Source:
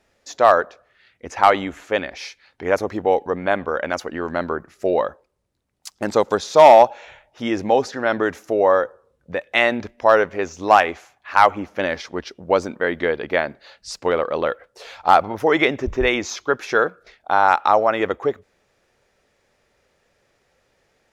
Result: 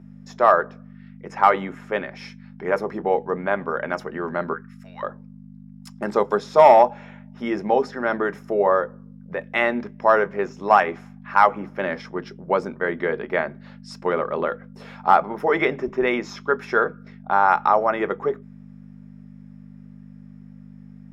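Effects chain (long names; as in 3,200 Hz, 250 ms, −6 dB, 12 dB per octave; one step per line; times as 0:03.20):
0:04.53–0:05.03: high-pass filter 1,300 Hz 24 dB per octave
mains hum 50 Hz, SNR 14 dB
convolution reverb RT60 0.15 s, pre-delay 3 ms, DRR 10.5 dB
level −9.5 dB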